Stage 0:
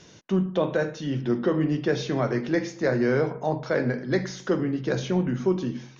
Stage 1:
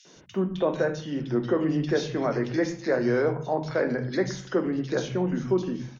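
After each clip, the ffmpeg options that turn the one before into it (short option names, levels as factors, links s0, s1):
-filter_complex "[0:a]acrossover=split=170|2400[s0][s1][s2];[s1]adelay=50[s3];[s0]adelay=160[s4];[s4][s3][s2]amix=inputs=3:normalize=0"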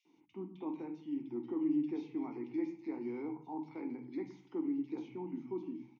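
-filter_complex "[0:a]asplit=3[s0][s1][s2];[s0]bandpass=f=300:t=q:w=8,volume=1[s3];[s1]bandpass=f=870:t=q:w=8,volume=0.501[s4];[s2]bandpass=f=2240:t=q:w=8,volume=0.355[s5];[s3][s4][s5]amix=inputs=3:normalize=0,volume=0.668"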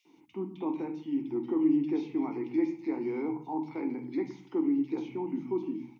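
-af "bandreject=f=60:t=h:w=6,bandreject=f=120:t=h:w=6,bandreject=f=180:t=h:w=6,bandreject=f=240:t=h:w=6,bandreject=f=300:t=h:w=6,volume=2.66"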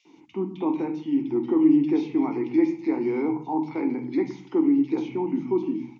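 -af "aresample=16000,aresample=44100,volume=2.37"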